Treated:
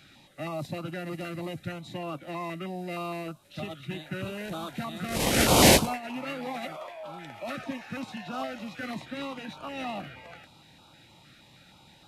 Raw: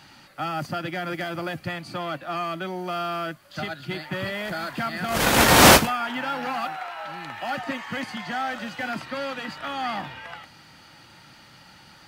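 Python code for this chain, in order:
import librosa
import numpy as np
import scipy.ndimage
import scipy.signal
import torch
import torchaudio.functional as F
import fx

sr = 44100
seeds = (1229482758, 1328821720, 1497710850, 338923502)

y = fx.formant_shift(x, sr, semitones=-3)
y = fx.filter_held_notch(y, sr, hz=6.4, low_hz=930.0, high_hz=1900.0)
y = F.gain(torch.from_numpy(y), -3.5).numpy()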